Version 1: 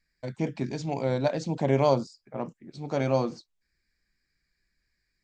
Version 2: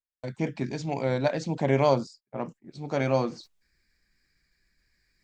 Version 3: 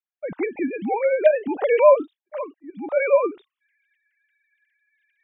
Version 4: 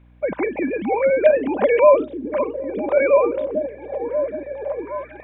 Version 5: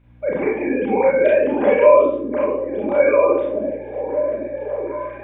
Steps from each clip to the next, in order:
noise gate −47 dBFS, range −30 dB; dynamic equaliser 1,900 Hz, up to +5 dB, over −46 dBFS, Q 1.3; reversed playback; upward compression, threshold −42 dBFS; reversed playback
three sine waves on the formant tracks; level +7 dB
compressor on every frequency bin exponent 0.6; mains hum 60 Hz, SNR 30 dB; echo through a band-pass that steps 770 ms, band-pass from 210 Hz, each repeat 0.7 octaves, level −3.5 dB
convolution reverb RT60 0.60 s, pre-delay 28 ms, DRR −5.5 dB; level −4.5 dB

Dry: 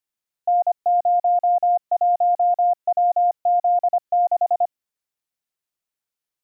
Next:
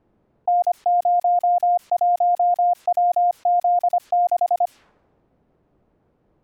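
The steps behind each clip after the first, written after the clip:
low-pass that shuts in the quiet parts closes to 440 Hz, open at −18 dBFS
envelope flattener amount 50%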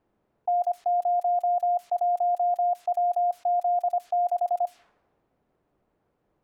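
low-shelf EQ 480 Hz −8 dB
on a send at −20 dB: convolution reverb RT60 0.70 s, pre-delay 3 ms
on the sum: level −4 dB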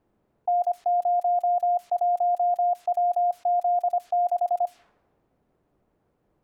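low-shelf EQ 430 Hz +4.5 dB

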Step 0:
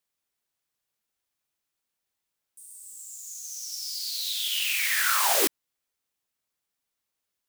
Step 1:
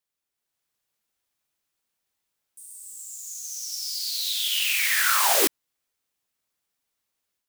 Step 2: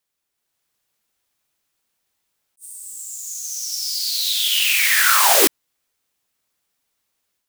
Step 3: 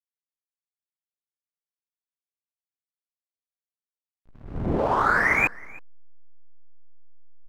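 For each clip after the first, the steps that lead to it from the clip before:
automatic gain control gain up to 6 dB; level −3 dB
level that may rise only so fast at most 460 dB per second; level +6.5 dB
voice inversion scrambler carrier 2,800 Hz; slack as between gear wheels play −29 dBFS; single-tap delay 318 ms −23 dB; level −2.5 dB

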